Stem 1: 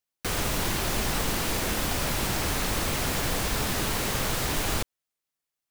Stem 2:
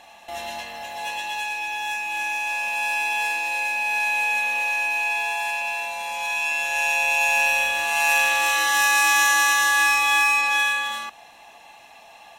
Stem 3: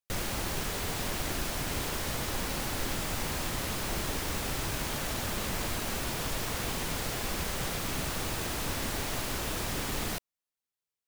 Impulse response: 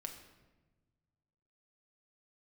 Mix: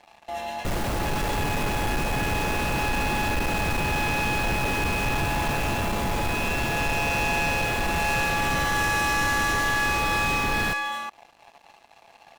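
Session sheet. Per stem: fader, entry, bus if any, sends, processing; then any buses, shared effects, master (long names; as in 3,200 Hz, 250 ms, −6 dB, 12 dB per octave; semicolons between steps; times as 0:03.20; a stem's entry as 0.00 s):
−11.5 dB, 0.90 s, no send, no processing
−8.5 dB, 0.00 s, no send, no processing
−0.5 dB, 0.55 s, no send, no processing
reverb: not used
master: high-shelf EQ 2,100 Hz −11 dB; leveller curve on the samples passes 3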